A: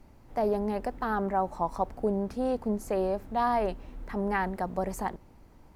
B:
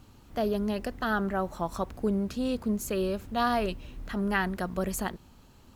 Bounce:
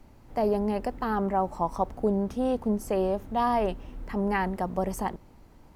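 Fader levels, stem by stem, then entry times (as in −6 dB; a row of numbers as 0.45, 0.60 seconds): +1.5, −12.0 decibels; 0.00, 0.00 seconds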